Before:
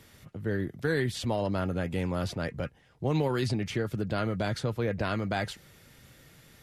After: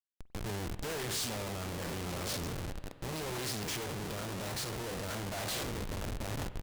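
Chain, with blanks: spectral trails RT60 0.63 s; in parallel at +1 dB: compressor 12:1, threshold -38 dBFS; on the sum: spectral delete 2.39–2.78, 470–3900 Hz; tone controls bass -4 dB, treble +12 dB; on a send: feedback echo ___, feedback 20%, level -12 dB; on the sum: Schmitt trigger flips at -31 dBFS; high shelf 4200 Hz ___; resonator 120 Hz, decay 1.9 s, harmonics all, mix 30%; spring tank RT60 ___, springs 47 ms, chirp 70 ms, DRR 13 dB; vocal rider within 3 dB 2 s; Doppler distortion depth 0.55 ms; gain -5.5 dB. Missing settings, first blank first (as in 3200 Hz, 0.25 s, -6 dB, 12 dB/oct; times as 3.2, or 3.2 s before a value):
0.896 s, +7.5 dB, 2.9 s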